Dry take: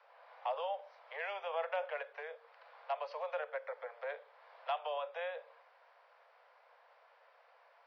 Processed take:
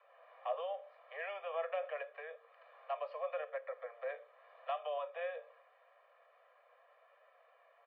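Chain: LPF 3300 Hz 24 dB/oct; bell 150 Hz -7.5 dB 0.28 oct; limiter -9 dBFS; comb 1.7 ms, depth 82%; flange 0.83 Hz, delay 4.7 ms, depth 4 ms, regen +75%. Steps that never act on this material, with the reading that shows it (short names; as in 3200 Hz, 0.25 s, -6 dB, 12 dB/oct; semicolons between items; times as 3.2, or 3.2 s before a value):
bell 150 Hz: input band starts at 400 Hz; limiter -9 dBFS: input peak -24.5 dBFS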